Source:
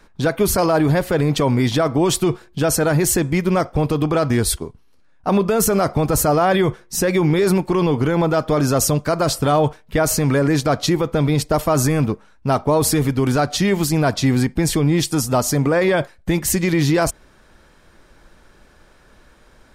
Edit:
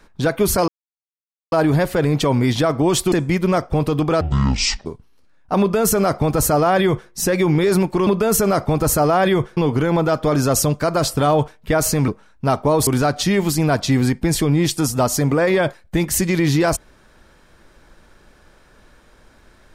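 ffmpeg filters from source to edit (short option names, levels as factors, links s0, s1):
-filter_complex "[0:a]asplit=9[s0][s1][s2][s3][s4][s5][s6][s7][s8];[s0]atrim=end=0.68,asetpts=PTS-STARTPTS,afade=t=out:st=0.676:d=0.004:c=hsin,apad=pad_dur=0.84[s9];[s1]atrim=start=0.68:end=2.282,asetpts=PTS-STARTPTS,afade=t=in:d=0.004:c=hsin[s10];[s2]atrim=start=3.148:end=4.244[s11];[s3]atrim=start=4.24:end=4.61,asetpts=PTS-STARTPTS,asetrate=25137,aresample=44100,atrim=end_sample=28626,asetpts=PTS-STARTPTS[s12];[s4]atrim=start=4.606:end=7.822[s13];[s5]atrim=start=5.348:end=6.852[s14];[s6]atrim=start=7.818:end=10.332[s15];[s7]atrim=start=12.098:end=12.892[s16];[s8]atrim=start=13.208[s17];[s9][s10]concat=n=2:v=0:a=1[s18];[s18][s11]acrossfade=d=0.004:c1=hsin:c2=hsin[s19];[s19][s12]acrossfade=d=0.004:c1=hsin:c2=hsin[s20];[s20][s13]acrossfade=d=0.004:c1=hsin:c2=hsin[s21];[s21][s14]acrossfade=d=0.004:c1=hsin:c2=hsin[s22];[s22][s15]acrossfade=d=0.004:c1=hsin:c2=hsin[s23];[s23][s16]acrossfade=d=0.004:c1=hsin:c2=hsin[s24];[s24][s17]acrossfade=d=0.004:c1=hsin:c2=hsin"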